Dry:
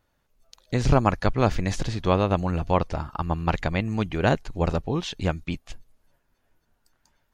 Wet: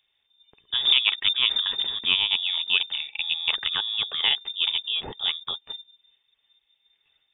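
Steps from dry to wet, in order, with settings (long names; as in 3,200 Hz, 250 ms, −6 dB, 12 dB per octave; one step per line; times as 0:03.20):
voice inversion scrambler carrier 3,600 Hz
hollow resonant body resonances 410/840/2,600 Hz, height 7 dB
level −2.5 dB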